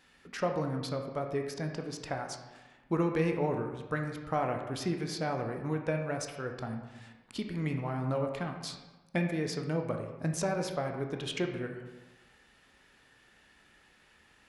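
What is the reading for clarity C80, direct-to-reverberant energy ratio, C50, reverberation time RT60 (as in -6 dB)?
7.5 dB, 3.0 dB, 5.5 dB, 1.2 s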